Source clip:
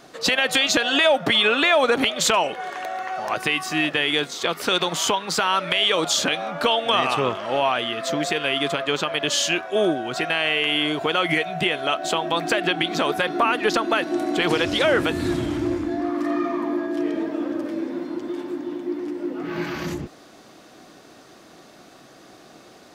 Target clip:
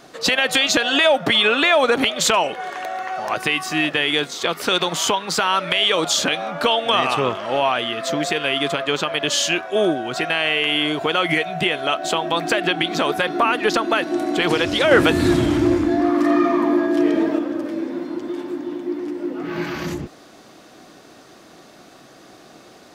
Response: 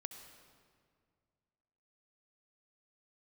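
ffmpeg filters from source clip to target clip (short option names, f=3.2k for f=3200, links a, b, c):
-filter_complex "[0:a]asettb=1/sr,asplit=3[a][b][c];[a]atrim=end=14.914[d];[b]atrim=start=14.91:end=17.39,asetpts=PTS-STARTPTS,afade=t=in:d=0.004:c=qsin,afade=t=out:st=2.476:d=0.004:c=qsin,acontrast=32[e];[c]atrim=start=17.386[f];[d][e]acrossfade=d=0.004:c1=hsin:c2=qsin[g];[g][f]acrossfade=d=0.004:c1=qsin:c2=hsin,volume=2dB"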